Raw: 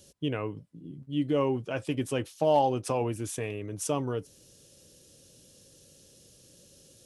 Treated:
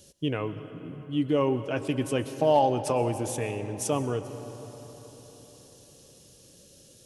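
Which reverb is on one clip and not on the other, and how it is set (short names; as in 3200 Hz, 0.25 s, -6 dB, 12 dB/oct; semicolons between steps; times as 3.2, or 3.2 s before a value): digital reverb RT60 4.5 s, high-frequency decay 0.55×, pre-delay 80 ms, DRR 10.5 dB; gain +2 dB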